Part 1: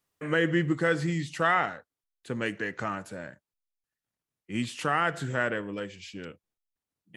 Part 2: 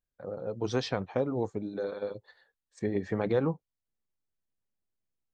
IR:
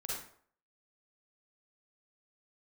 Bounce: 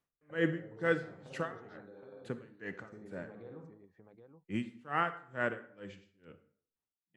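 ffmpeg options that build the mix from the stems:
-filter_complex "[0:a]highshelf=f=3400:g=-11,aeval=exprs='val(0)*pow(10,-34*(0.5-0.5*cos(2*PI*2.2*n/s))/20)':c=same,volume=0.708,asplit=3[s0][s1][s2];[s1]volume=0.282[s3];[1:a]lowpass=f=2300:p=1,acompressor=threshold=0.0178:ratio=3,adelay=100,volume=0.224,asplit=3[s4][s5][s6];[s5]volume=0.631[s7];[s6]volume=0.335[s8];[s2]apad=whole_len=239893[s9];[s4][s9]sidechaincompress=threshold=0.00398:ratio=8:attack=16:release=950[s10];[2:a]atrim=start_sample=2205[s11];[s3][s7]amix=inputs=2:normalize=0[s12];[s12][s11]afir=irnorm=-1:irlink=0[s13];[s8]aecho=0:1:773:1[s14];[s0][s10][s13][s14]amix=inputs=4:normalize=0"

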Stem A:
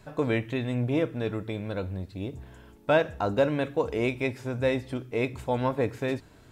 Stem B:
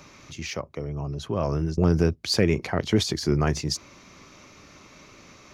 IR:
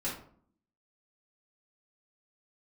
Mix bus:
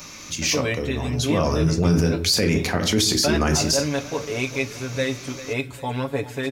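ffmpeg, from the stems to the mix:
-filter_complex "[0:a]highshelf=f=2300:g=10,aecho=1:1:7.1:0.77,adelay=350,volume=0.794,asplit=2[s0][s1];[s1]volume=0.168[s2];[1:a]crystalizer=i=4:c=0,volume=1.19,asplit=2[s3][s4];[s4]volume=0.473[s5];[2:a]atrim=start_sample=2205[s6];[s5][s6]afir=irnorm=-1:irlink=0[s7];[s2]aecho=0:1:397|794|1191|1588|1985|2382|2779:1|0.48|0.23|0.111|0.0531|0.0255|0.0122[s8];[s0][s3][s7][s8]amix=inputs=4:normalize=0,alimiter=limit=0.299:level=0:latency=1:release=22"

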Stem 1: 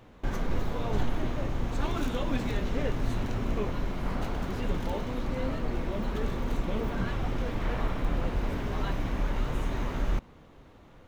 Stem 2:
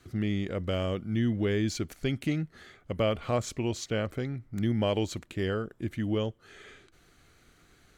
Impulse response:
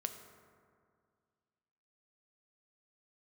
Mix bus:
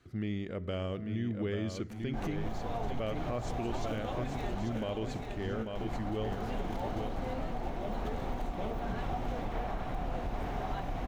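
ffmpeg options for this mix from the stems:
-filter_complex "[0:a]equalizer=f=740:t=o:w=0.37:g=13,adelay=1900,volume=0.531,asplit=3[s0][s1][s2];[s0]atrim=end=4.79,asetpts=PTS-STARTPTS,afade=t=out:st=4.786:d=0.004:c=hsin[s3];[s1]atrim=start=4.79:end=5.75,asetpts=PTS-STARTPTS,volume=0[s4];[s2]atrim=start=5.75,asetpts=PTS-STARTPTS,afade=t=in:d=0.004:c=hsin[s5];[s3][s4][s5]concat=n=3:v=0:a=1,asplit=2[s6][s7];[s7]volume=0.473[s8];[1:a]highshelf=f=5600:g=-10.5,volume=0.398,asplit=4[s9][s10][s11][s12];[s10]volume=0.422[s13];[s11]volume=0.668[s14];[s12]apad=whole_len=572111[s15];[s6][s15]sidechaincompress=threshold=0.0126:ratio=8:attack=5.5:release=105[s16];[2:a]atrim=start_sample=2205[s17];[s13][s17]afir=irnorm=-1:irlink=0[s18];[s8][s14]amix=inputs=2:normalize=0,aecho=0:1:843|1686|2529|3372|4215:1|0.32|0.102|0.0328|0.0105[s19];[s16][s9][s18][s19]amix=inputs=4:normalize=0,alimiter=level_in=1.19:limit=0.0631:level=0:latency=1:release=161,volume=0.841"

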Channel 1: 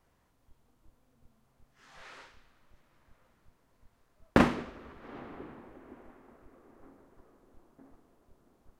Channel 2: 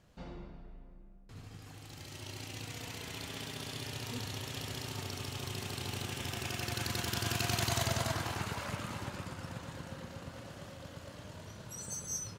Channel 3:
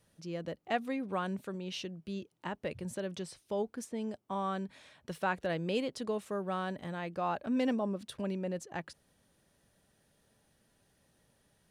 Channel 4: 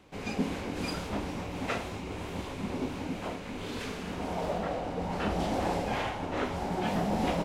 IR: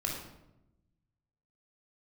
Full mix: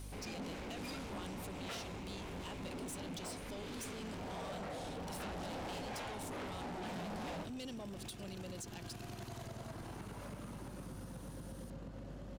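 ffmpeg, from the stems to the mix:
-filter_complex "[0:a]adelay=2250,volume=1.12[s0];[1:a]equalizer=f=250:w=0.35:g=14,adelay=1600,volume=0.422[s1];[2:a]aexciter=amount=7.6:drive=4.1:freq=2700,volume=1.12[s2];[3:a]volume=1.19[s3];[s0][s1][s2]amix=inputs=3:normalize=0,aeval=exprs='val(0)+0.00631*(sin(2*PI*50*n/s)+sin(2*PI*2*50*n/s)/2+sin(2*PI*3*50*n/s)/3+sin(2*PI*4*50*n/s)/4+sin(2*PI*5*50*n/s)/5)':c=same,acompressor=threshold=0.0224:ratio=6,volume=1[s4];[s3][s4]amix=inputs=2:normalize=0,asoftclip=type=tanh:threshold=0.0224,alimiter=level_in=6.68:limit=0.0631:level=0:latency=1:release=325,volume=0.15"

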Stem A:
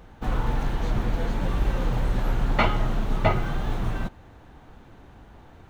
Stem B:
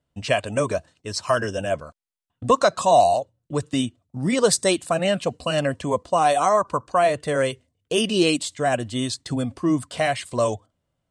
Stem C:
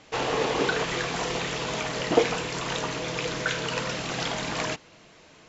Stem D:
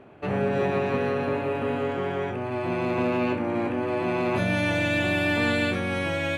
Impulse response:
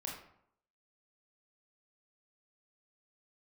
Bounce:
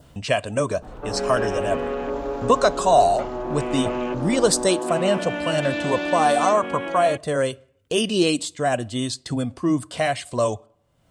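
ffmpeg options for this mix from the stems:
-filter_complex "[0:a]equalizer=f=490:w=0.65:g=10,adelay=600,volume=0.141[s0];[1:a]acompressor=mode=upward:threshold=0.0355:ratio=2.5,volume=0.944,asplit=2[s1][s2];[s2]volume=0.0944[s3];[2:a]acompressor=threshold=0.0141:ratio=6,adelay=1250,volume=0.355[s4];[3:a]highpass=f=240:w=0.5412,highpass=f=240:w=1.3066,afwtdn=0.0224,adelay=800,volume=1[s5];[4:a]atrim=start_sample=2205[s6];[s3][s6]afir=irnorm=-1:irlink=0[s7];[s0][s1][s4][s5][s7]amix=inputs=5:normalize=0,adynamicequalizer=threshold=0.00891:dfrequency=2200:dqfactor=2:tfrequency=2200:tqfactor=2:attack=5:release=100:ratio=0.375:range=3:mode=cutabove:tftype=bell"

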